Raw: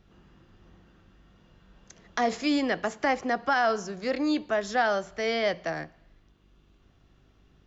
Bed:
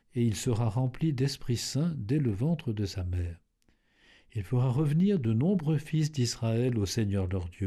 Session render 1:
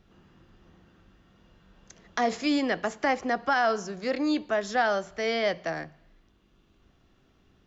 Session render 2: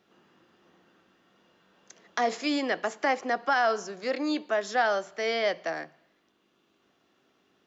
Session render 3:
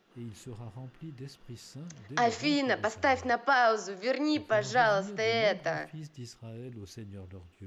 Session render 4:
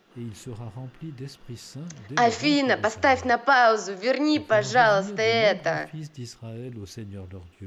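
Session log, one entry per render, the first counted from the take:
de-hum 50 Hz, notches 3
HPF 300 Hz 12 dB/oct
add bed -15.5 dB
gain +6.5 dB

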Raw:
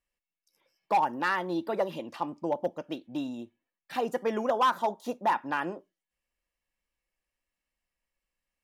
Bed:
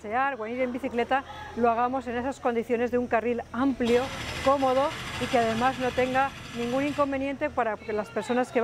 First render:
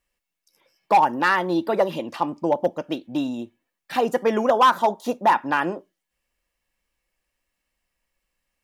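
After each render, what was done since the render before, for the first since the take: gain +8.5 dB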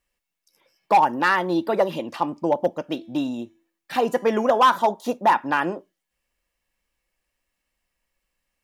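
2.87–4.76 de-hum 332.7 Hz, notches 36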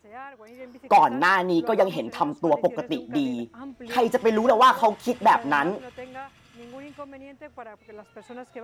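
add bed -14.5 dB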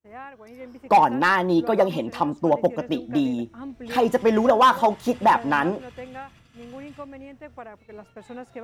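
expander -49 dBFS; low shelf 230 Hz +7.5 dB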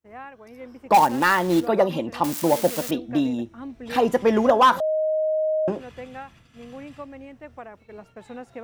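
0.94–1.67 short-mantissa float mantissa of 2-bit; 2.24–2.91 switching spikes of -17 dBFS; 4.8–5.68 bleep 624 Hz -19.5 dBFS

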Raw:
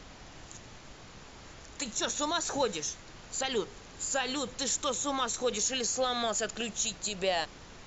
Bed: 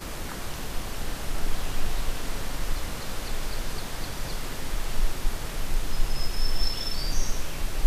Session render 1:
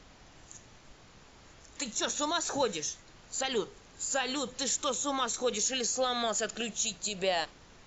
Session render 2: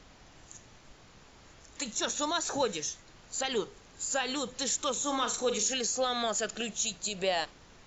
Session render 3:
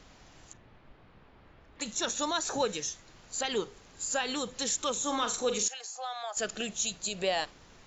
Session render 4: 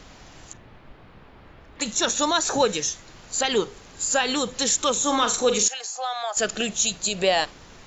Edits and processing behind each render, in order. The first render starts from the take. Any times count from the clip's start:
noise print and reduce 6 dB
4.92–5.74 flutter echo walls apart 7.6 m, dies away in 0.31 s
0.53–1.81 air absorption 400 m; 5.68–6.37 ladder high-pass 690 Hz, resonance 55%
gain +9 dB

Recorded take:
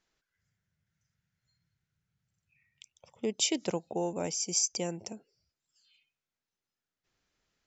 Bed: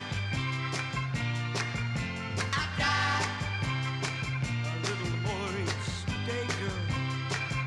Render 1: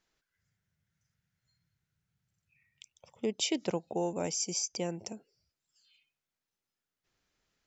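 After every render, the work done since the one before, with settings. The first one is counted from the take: 3.26–3.88 air absorption 71 m; 4.53–4.97 air absorption 81 m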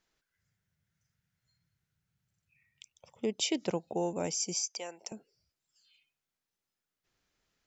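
4.55–5.12 HPF 700 Hz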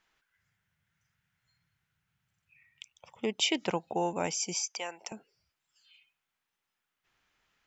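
band shelf 1600 Hz +8 dB 2.4 oct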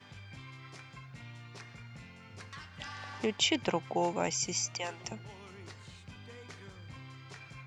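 add bed -17 dB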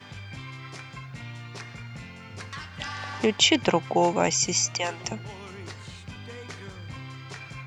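gain +9 dB

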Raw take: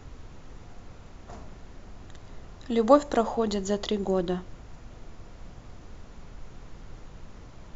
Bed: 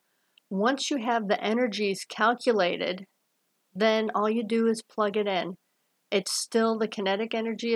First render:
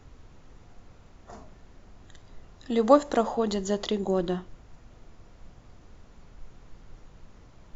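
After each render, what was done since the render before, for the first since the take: noise print and reduce 6 dB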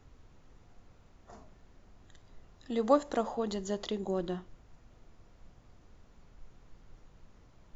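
gain -7 dB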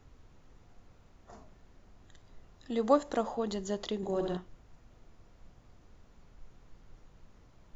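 3.96–4.37 flutter echo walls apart 11.5 m, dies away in 0.98 s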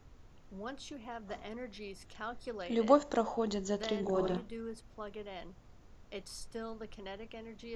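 add bed -18.5 dB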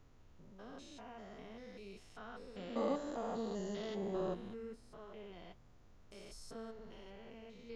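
stepped spectrum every 0.2 s; flange 1.4 Hz, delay 6.4 ms, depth 5.3 ms, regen -52%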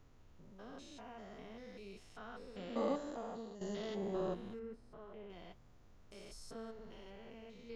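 2.89–3.61 fade out, to -12.5 dB; 4.59–5.3 high shelf 3100 Hz -12 dB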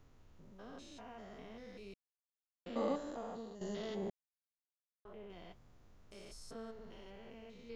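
1.94–2.66 mute; 4.1–5.05 mute

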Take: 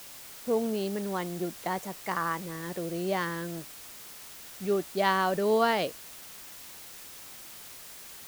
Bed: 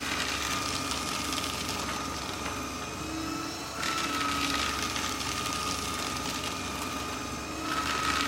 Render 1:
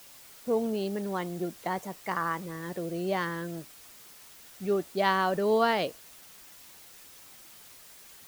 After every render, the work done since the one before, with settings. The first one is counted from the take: denoiser 6 dB, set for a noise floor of -47 dBFS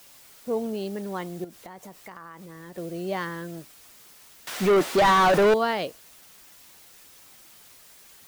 1.44–2.78 compressor, threshold -39 dBFS; 4.47–5.54 overdrive pedal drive 32 dB, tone 2500 Hz, clips at -11 dBFS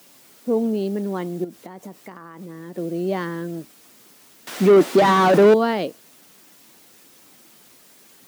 HPF 120 Hz 12 dB/oct; bell 260 Hz +10.5 dB 1.8 oct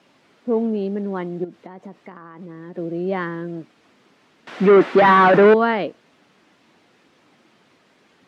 dynamic EQ 1700 Hz, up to +7 dB, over -32 dBFS, Q 0.77; LPF 2800 Hz 12 dB/oct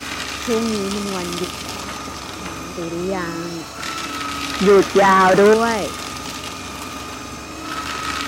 add bed +4 dB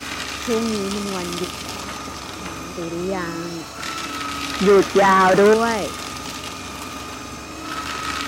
gain -1.5 dB

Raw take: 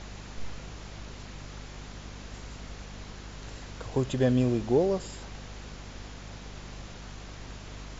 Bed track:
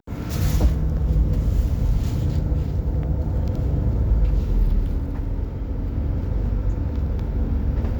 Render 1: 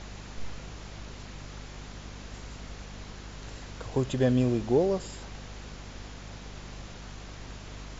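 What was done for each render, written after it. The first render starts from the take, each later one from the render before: nothing audible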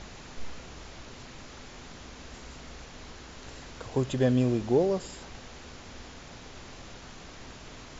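de-hum 50 Hz, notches 4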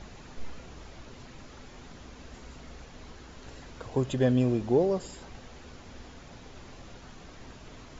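denoiser 6 dB, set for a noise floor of -47 dBFS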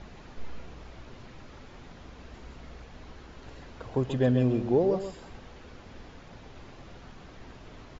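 air absorption 110 m; on a send: echo 0.134 s -9 dB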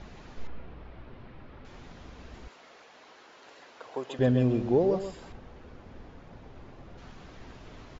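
0.47–1.65 air absorption 320 m; 2.48–4.19 HPF 510 Hz; 5.32–6.98 high shelf 2100 Hz -10.5 dB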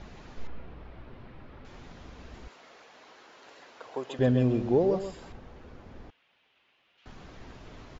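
6.1–7.06 band-pass 2900 Hz, Q 3.1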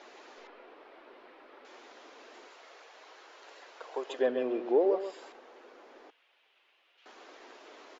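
treble ducked by the level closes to 2900 Hz, closed at -23.5 dBFS; inverse Chebyshev high-pass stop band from 170 Hz, stop band 40 dB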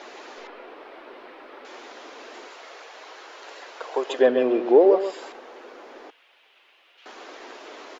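gain +10.5 dB

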